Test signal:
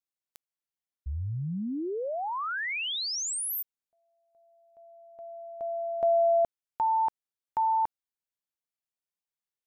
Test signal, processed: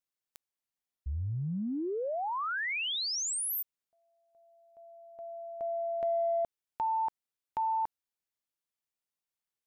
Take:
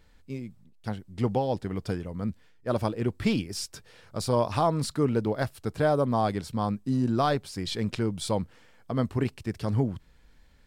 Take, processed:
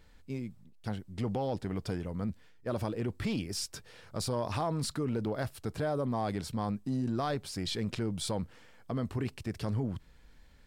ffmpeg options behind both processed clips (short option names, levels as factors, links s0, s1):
-af "acompressor=threshold=0.0355:ratio=4:attack=1.1:release=29:knee=6"